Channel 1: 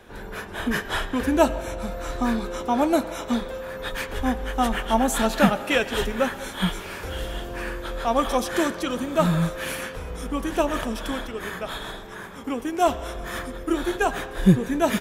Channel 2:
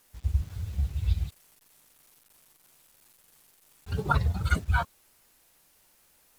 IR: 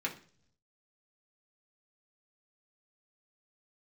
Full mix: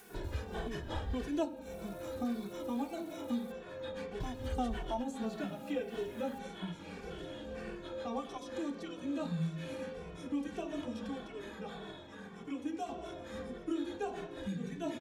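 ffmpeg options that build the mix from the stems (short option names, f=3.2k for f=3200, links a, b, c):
-filter_complex "[0:a]lowpass=3.9k,crystalizer=i=1:c=0,volume=3dB,asplit=2[a][b];[b]volume=-10.5dB[c];[1:a]acompressor=mode=upward:threshold=-45dB:ratio=2.5,volume=-3.5dB,asplit=3[d][e][f];[d]atrim=end=3.52,asetpts=PTS-STARTPTS,afade=t=out:st=3.516:d=0.004:c=hsin[g];[e]atrim=start=3.52:end=4.2,asetpts=PTS-STARTPTS,volume=0[h];[f]atrim=start=4.2,asetpts=PTS-STARTPTS,afade=t=in:d=0.004:c=hsin[i];[g][h][i]concat=n=3:v=0:a=1,asplit=2[j][k];[k]apad=whole_len=661619[l];[a][l]sidechaingate=range=-20dB:threshold=-54dB:ratio=16:detection=peak[m];[2:a]atrim=start_sample=2205[n];[c][n]afir=irnorm=-1:irlink=0[o];[m][j][o]amix=inputs=3:normalize=0,acrossover=split=880|3300[p][q][r];[p]acompressor=threshold=-33dB:ratio=4[s];[q]acompressor=threshold=-60dB:ratio=4[t];[r]acompressor=threshold=-52dB:ratio=4[u];[s][t][u]amix=inputs=3:normalize=0,asplit=2[v][w];[w]adelay=2.2,afreqshift=-1.7[x];[v][x]amix=inputs=2:normalize=1"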